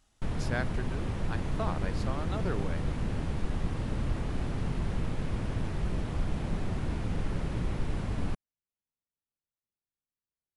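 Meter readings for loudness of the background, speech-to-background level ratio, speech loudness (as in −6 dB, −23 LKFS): −34.5 LKFS, −5.0 dB, −39.5 LKFS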